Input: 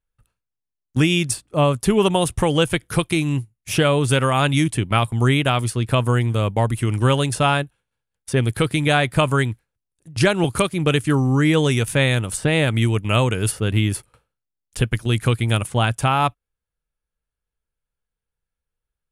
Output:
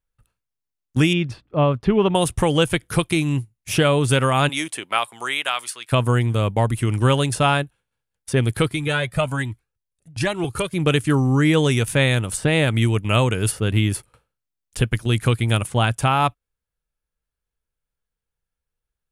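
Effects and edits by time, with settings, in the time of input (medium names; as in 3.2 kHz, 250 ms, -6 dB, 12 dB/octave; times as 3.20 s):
1.13–2.15 s: distance through air 300 m
4.48–5.91 s: high-pass 440 Hz -> 1.4 kHz
8.68–10.73 s: Shepard-style flanger rising 1.2 Hz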